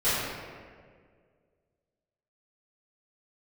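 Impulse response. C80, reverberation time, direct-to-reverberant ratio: -0.5 dB, 1.9 s, -17.5 dB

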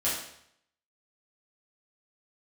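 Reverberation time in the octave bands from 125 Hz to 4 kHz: 0.75 s, 0.65 s, 0.70 s, 0.70 s, 0.70 s, 0.65 s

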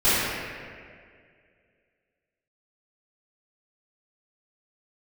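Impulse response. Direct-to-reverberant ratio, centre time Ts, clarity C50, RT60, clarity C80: -18.5 dB, 161 ms, -4.5 dB, 2.1 s, -2.0 dB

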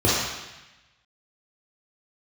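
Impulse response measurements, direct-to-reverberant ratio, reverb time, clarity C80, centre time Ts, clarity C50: -7.5 dB, 1.0 s, 2.0 dB, 88 ms, -1.5 dB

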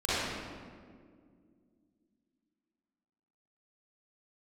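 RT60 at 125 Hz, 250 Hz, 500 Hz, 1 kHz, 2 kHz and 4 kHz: 2.7 s, 3.4 s, 2.4 s, 1.7 s, 1.4 s, 1.1 s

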